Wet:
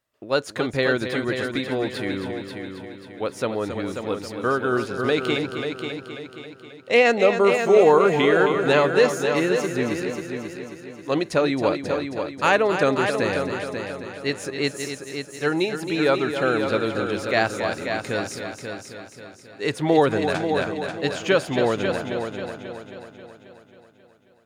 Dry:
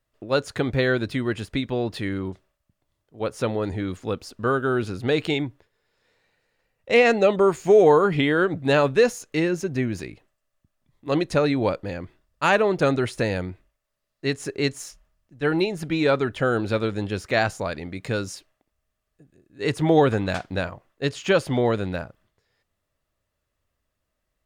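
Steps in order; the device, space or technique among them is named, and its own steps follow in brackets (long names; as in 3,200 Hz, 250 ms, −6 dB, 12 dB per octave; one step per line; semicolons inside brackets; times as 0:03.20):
high-pass filter 240 Hz 6 dB per octave
multi-head tape echo (echo machine with several playback heads 269 ms, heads first and second, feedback 50%, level −9 dB; tape wow and flutter 24 cents)
level +1 dB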